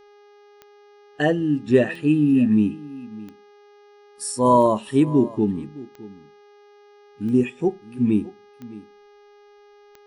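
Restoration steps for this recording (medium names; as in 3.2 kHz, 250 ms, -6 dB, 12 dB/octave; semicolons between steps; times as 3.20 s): de-click; de-hum 410.9 Hz, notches 15; inverse comb 614 ms -19 dB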